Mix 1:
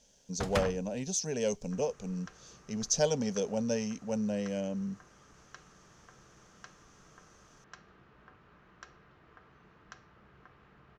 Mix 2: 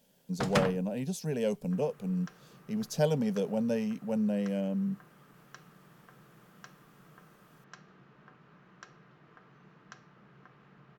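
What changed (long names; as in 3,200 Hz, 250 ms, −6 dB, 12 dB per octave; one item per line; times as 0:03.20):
speech: remove low-pass with resonance 6,200 Hz, resonance Q 6.1
first sound +3.5 dB
master: add low shelf with overshoot 110 Hz −10 dB, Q 3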